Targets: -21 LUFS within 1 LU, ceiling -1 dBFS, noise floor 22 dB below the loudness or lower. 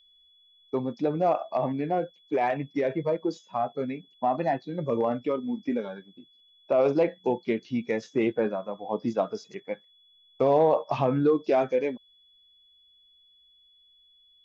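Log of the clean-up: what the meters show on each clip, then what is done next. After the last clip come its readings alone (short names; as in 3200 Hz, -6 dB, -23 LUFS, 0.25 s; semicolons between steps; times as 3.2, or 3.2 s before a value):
steady tone 3400 Hz; tone level -58 dBFS; loudness -27.5 LUFS; peak -12.0 dBFS; loudness target -21.0 LUFS
-> notch 3400 Hz, Q 30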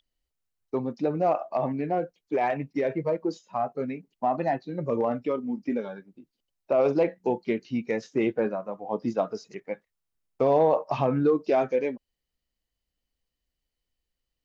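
steady tone none; loudness -27.5 LUFS; peak -12.0 dBFS; loudness target -21.0 LUFS
-> gain +6.5 dB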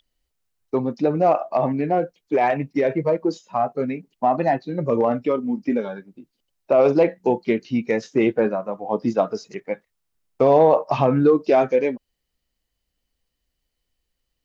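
loudness -21.0 LUFS; peak -5.5 dBFS; noise floor -78 dBFS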